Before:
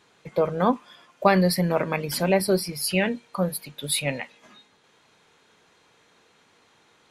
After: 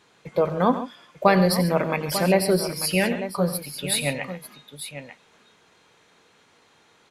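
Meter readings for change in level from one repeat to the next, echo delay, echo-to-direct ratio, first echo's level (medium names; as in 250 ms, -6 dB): no regular repeats, 91 ms, -8.0 dB, -14.0 dB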